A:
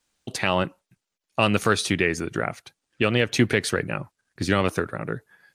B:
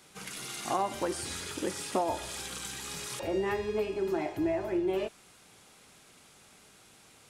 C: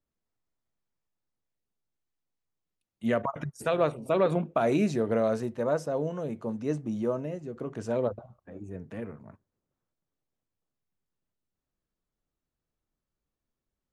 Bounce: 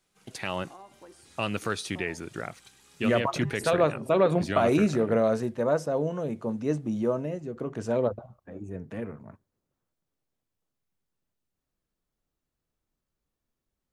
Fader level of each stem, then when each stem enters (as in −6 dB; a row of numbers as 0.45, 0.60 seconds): −9.5, −18.5, +2.5 decibels; 0.00, 0.00, 0.00 seconds